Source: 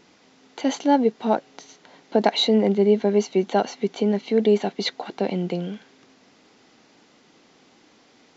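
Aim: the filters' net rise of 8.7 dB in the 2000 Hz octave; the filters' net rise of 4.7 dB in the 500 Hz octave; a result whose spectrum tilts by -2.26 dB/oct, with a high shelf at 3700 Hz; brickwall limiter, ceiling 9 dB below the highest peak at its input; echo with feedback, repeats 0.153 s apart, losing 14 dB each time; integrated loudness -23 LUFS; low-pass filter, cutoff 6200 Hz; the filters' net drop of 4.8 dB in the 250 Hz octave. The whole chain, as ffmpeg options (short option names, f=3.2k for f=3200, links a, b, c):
-af "lowpass=6.2k,equalizer=f=250:t=o:g=-9,equalizer=f=500:t=o:g=8.5,equalizer=f=2k:t=o:g=9,highshelf=f=3.7k:g=5,alimiter=limit=-9dB:level=0:latency=1,aecho=1:1:153|306:0.2|0.0399,volume=-2dB"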